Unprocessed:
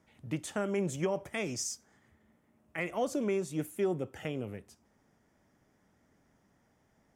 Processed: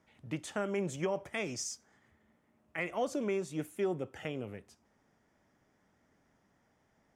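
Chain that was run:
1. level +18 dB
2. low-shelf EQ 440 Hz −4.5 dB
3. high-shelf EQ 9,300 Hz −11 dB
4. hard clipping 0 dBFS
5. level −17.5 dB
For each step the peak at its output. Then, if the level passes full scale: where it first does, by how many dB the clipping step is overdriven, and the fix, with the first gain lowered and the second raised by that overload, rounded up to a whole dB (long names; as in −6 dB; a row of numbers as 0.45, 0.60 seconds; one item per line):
−3.5, −4.5, −4.5, −4.5, −22.0 dBFS
no step passes full scale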